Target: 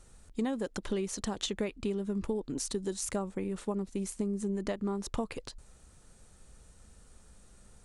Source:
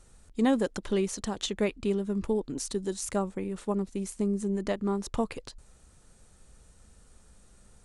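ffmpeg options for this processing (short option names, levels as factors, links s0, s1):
-af "acompressor=threshold=0.0355:ratio=6"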